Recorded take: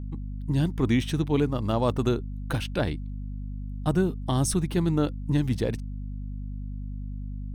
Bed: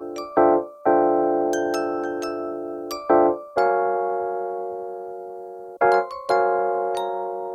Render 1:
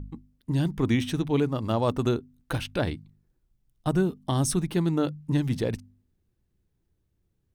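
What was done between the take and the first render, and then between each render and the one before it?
hum removal 50 Hz, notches 5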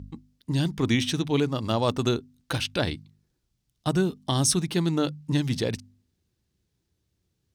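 high-pass filter 57 Hz
parametric band 4,900 Hz +10 dB 1.9 octaves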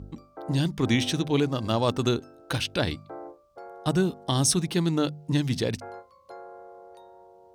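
mix in bed −24 dB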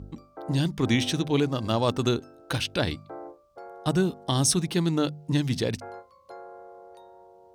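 no processing that can be heard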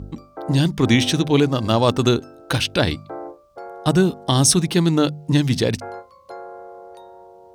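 level +7.5 dB

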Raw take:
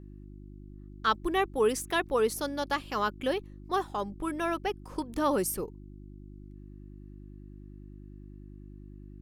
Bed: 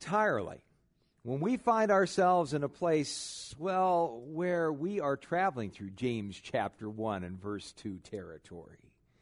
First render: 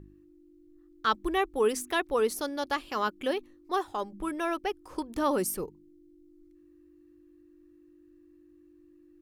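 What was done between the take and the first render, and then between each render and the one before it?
hum removal 50 Hz, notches 5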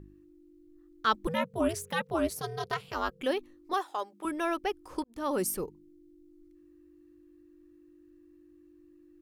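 0:01.27–0:03.21: ring modulation 160 Hz
0:03.73–0:04.25: high-pass filter 490 Hz
0:05.04–0:05.45: fade in linear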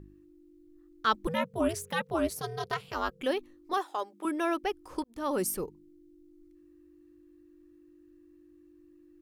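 0:03.77–0:04.63: low shelf with overshoot 160 Hz −13.5 dB, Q 1.5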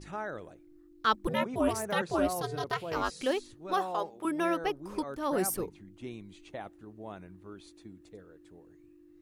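mix in bed −9 dB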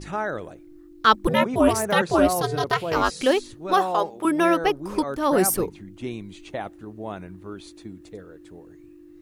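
level +10 dB

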